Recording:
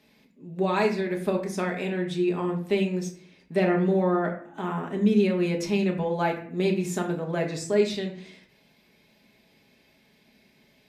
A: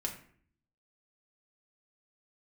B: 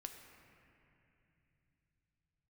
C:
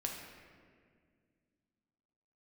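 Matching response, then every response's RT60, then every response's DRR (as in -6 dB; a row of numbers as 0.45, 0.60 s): A; 0.55, 2.8, 2.0 s; 0.0, 4.0, 0.0 dB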